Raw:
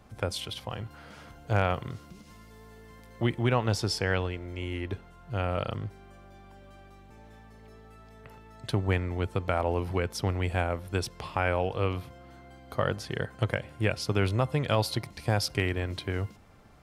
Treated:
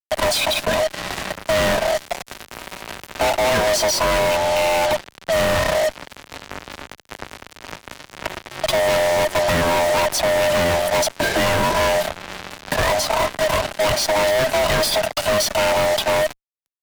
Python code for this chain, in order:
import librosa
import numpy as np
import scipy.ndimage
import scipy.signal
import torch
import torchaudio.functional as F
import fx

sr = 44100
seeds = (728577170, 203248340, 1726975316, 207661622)

y = fx.band_swap(x, sr, width_hz=500)
y = fx.fuzz(y, sr, gain_db=47.0, gate_db=-45.0)
y = fx.band_squash(y, sr, depth_pct=40)
y = F.gain(torch.from_numpy(y), -3.0).numpy()